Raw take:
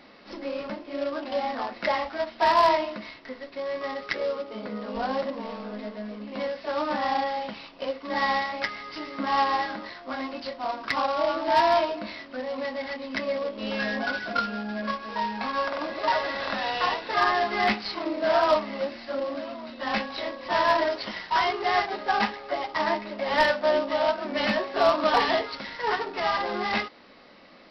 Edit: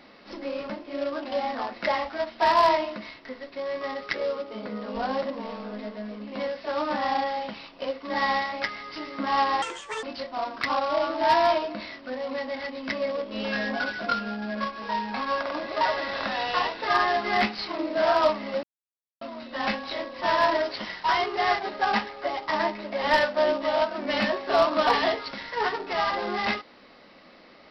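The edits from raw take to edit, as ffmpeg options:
ffmpeg -i in.wav -filter_complex "[0:a]asplit=5[link_01][link_02][link_03][link_04][link_05];[link_01]atrim=end=9.624[link_06];[link_02]atrim=start=9.62:end=10.3,asetpts=PTS-STARTPTS,asetrate=72765,aresample=44100[link_07];[link_03]atrim=start=10.296:end=18.9,asetpts=PTS-STARTPTS,afade=type=out:start_time=8.6:duration=0.004:curve=hsin[link_08];[link_04]atrim=start=18.9:end=19.48,asetpts=PTS-STARTPTS,volume=0[link_09];[link_05]atrim=start=19.48,asetpts=PTS-STARTPTS,afade=type=in:duration=0.004:curve=hsin[link_10];[link_06][link_07]acrossfade=duration=0.004:curve1=hsin:curve2=hsin[link_11];[link_08][link_09][link_10]concat=n=3:v=0:a=1[link_12];[link_11][link_12]acrossfade=duration=0.004:curve1=hsin:curve2=hsin" out.wav

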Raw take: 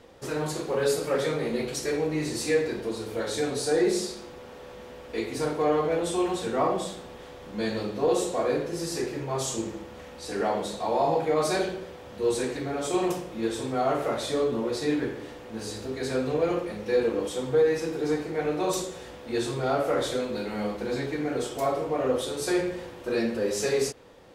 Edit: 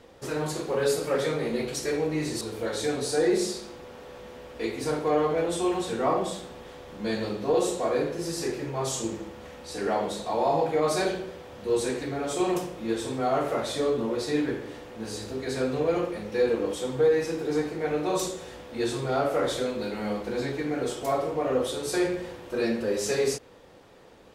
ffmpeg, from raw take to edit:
ffmpeg -i in.wav -filter_complex "[0:a]asplit=2[link_01][link_02];[link_01]atrim=end=2.412[link_03];[link_02]atrim=start=2.948[link_04];[link_03][link_04]acrossfade=duration=0.004:curve1=hsin:curve2=hsin" out.wav

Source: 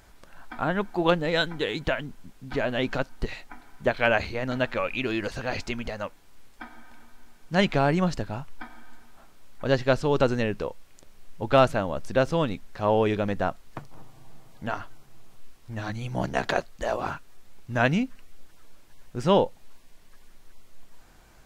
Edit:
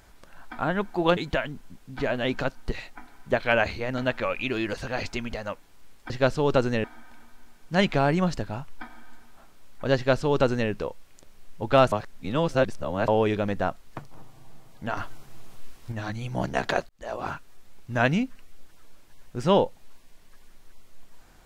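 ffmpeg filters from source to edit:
ffmpeg -i in.wav -filter_complex "[0:a]asplit=9[link_01][link_02][link_03][link_04][link_05][link_06][link_07][link_08][link_09];[link_01]atrim=end=1.172[link_10];[link_02]atrim=start=1.708:end=6.642[link_11];[link_03]atrim=start=9.758:end=10.502[link_12];[link_04]atrim=start=6.638:end=11.722[link_13];[link_05]atrim=start=11.718:end=12.882,asetpts=PTS-STARTPTS,areverse[link_14];[link_06]atrim=start=12.878:end=14.772[link_15];[link_07]atrim=start=14.768:end=15.722,asetpts=PTS-STARTPTS,volume=6dB[link_16];[link_08]atrim=start=15.718:end=16.69,asetpts=PTS-STARTPTS,afade=type=out:start_time=0.968:duration=0.004:curve=hsin[link_17];[link_09]atrim=start=16.69,asetpts=PTS-STARTPTS,afade=type=in:duration=0.44[link_18];[link_10][link_11]acrossfade=duration=0.004:curve1=hsin:curve2=hsin[link_19];[link_19][link_12]acrossfade=duration=0.004:curve1=hsin:curve2=hsin[link_20];[link_20][link_13]acrossfade=duration=0.004:curve1=hsin:curve2=hsin[link_21];[link_21][link_14]acrossfade=duration=0.004:curve1=hsin:curve2=hsin[link_22];[link_22][link_15]acrossfade=duration=0.004:curve1=hsin:curve2=hsin[link_23];[link_23][link_16]acrossfade=duration=0.004:curve1=hsin:curve2=hsin[link_24];[link_17][link_18]concat=n=2:v=0:a=1[link_25];[link_24][link_25]acrossfade=duration=0.004:curve1=hsin:curve2=hsin" out.wav

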